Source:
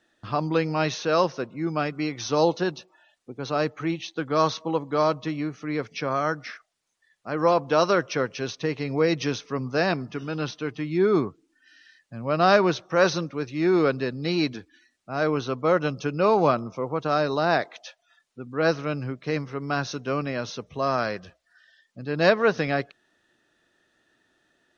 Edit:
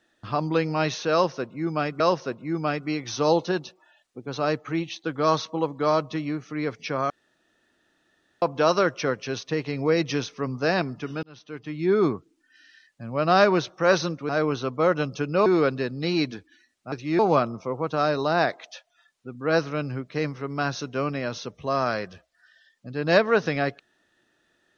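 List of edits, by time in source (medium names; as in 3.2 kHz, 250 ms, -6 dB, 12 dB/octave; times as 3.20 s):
1.12–2.00 s: loop, 2 plays
6.22–7.54 s: room tone
10.35–11.05 s: fade in
13.41–13.68 s: swap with 15.14–16.31 s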